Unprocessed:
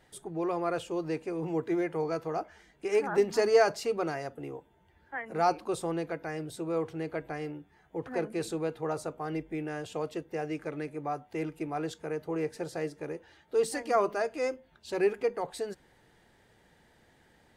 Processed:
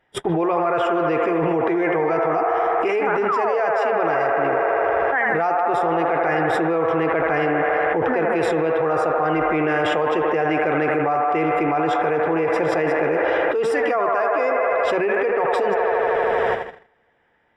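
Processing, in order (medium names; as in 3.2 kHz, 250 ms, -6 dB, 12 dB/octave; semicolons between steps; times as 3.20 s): painted sound fall, 3.28–3.59 s, 410–1400 Hz -28 dBFS; Savitzky-Golay filter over 25 samples; bass shelf 360 Hz -9 dB; on a send: feedback echo behind a band-pass 79 ms, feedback 82%, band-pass 1 kHz, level -4 dB; on the sum: gate -55 dBFS, range -40 dB; level flattener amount 100%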